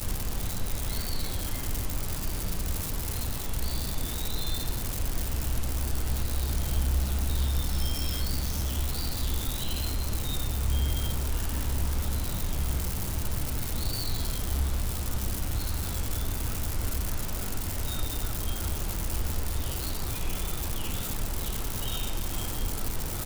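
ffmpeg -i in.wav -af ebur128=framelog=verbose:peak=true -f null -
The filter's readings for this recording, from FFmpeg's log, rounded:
Integrated loudness:
  I:         -31.5 LUFS
  Threshold: -41.5 LUFS
Loudness range:
  LRA:         2.6 LU
  Threshold: -51.4 LUFS
  LRA low:   -32.5 LUFS
  LRA high:  -29.9 LUFS
True peak:
  Peak:      -16.1 dBFS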